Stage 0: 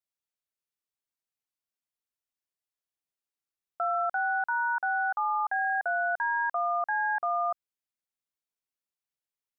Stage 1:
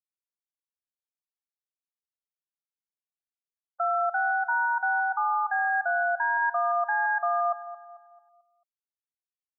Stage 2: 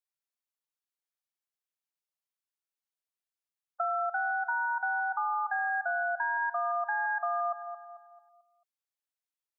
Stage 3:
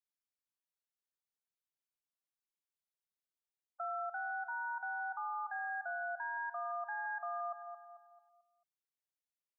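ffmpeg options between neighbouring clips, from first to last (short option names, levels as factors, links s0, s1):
-filter_complex "[0:a]afftfilt=real='re*gte(hypot(re,im),0.0398)':imag='im*gte(hypot(re,im),0.0398)':win_size=1024:overlap=0.75,asplit=2[s0][s1];[s1]adelay=221,lowpass=f=1500:p=1,volume=0.224,asplit=2[s2][s3];[s3]adelay=221,lowpass=f=1500:p=1,volume=0.48,asplit=2[s4][s5];[s5]adelay=221,lowpass=f=1500:p=1,volume=0.48,asplit=2[s6][s7];[s7]adelay=221,lowpass=f=1500:p=1,volume=0.48,asplit=2[s8][s9];[s9]adelay=221,lowpass=f=1500:p=1,volume=0.48[s10];[s0][s2][s4][s6][s8][s10]amix=inputs=6:normalize=0,volume=1.33"
-af "highpass=500,acompressor=threshold=0.0398:ratio=4"
-af "alimiter=level_in=1.19:limit=0.0631:level=0:latency=1:release=16,volume=0.841,volume=0.422"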